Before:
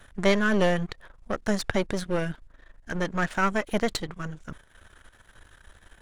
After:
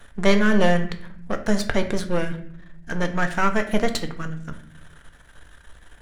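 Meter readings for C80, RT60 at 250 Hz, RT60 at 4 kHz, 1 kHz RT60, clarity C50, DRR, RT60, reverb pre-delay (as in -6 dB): 15.0 dB, 1.2 s, 0.45 s, 0.50 s, 12.0 dB, 6.5 dB, 0.60 s, 4 ms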